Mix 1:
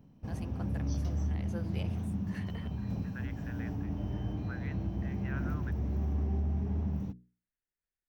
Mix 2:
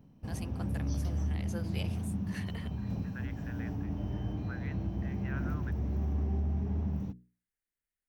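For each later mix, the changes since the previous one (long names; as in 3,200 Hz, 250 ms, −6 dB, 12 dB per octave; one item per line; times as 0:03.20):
first voice: add high-shelf EQ 2,900 Hz +11 dB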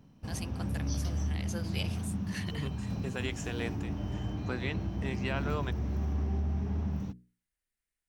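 second voice: remove resonant band-pass 1,600 Hz, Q 3.7
background: add parametric band 1,300 Hz +4 dB 1 octave
master: add parametric band 5,200 Hz +8 dB 2.5 octaves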